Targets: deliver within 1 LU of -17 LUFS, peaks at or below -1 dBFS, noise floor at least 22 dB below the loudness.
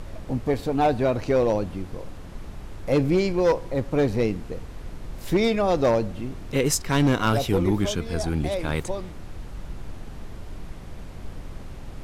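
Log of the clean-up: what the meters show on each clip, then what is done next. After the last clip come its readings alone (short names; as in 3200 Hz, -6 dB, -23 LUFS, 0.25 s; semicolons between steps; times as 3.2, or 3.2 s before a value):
clipped 0.9%; flat tops at -14.0 dBFS; noise floor -39 dBFS; noise floor target -46 dBFS; loudness -24.0 LUFS; peak -14.0 dBFS; loudness target -17.0 LUFS
-> clip repair -14 dBFS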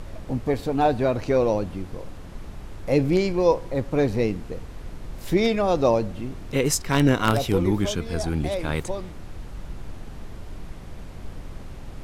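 clipped 0.0%; noise floor -39 dBFS; noise floor target -46 dBFS
-> noise print and reduce 7 dB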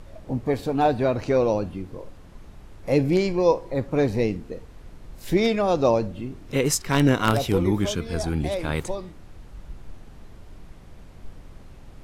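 noise floor -45 dBFS; noise floor target -46 dBFS
-> noise print and reduce 6 dB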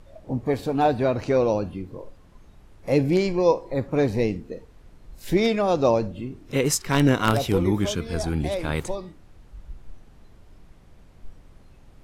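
noise floor -51 dBFS; loudness -23.5 LUFS; peak -5.0 dBFS; loudness target -17.0 LUFS
-> gain +6.5 dB; limiter -1 dBFS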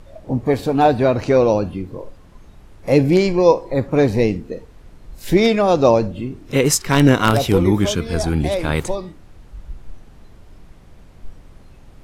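loudness -17.0 LUFS; peak -1.0 dBFS; noise floor -45 dBFS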